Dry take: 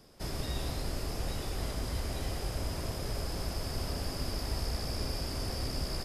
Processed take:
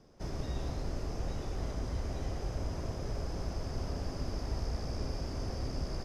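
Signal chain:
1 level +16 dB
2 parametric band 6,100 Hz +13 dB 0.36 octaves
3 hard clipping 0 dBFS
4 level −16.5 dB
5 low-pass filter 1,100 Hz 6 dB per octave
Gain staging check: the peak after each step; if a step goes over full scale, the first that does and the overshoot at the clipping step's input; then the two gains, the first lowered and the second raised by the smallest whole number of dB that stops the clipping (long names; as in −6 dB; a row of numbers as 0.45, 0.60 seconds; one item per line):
−5.5, −4.5, −4.5, −21.0, −23.0 dBFS
no step passes full scale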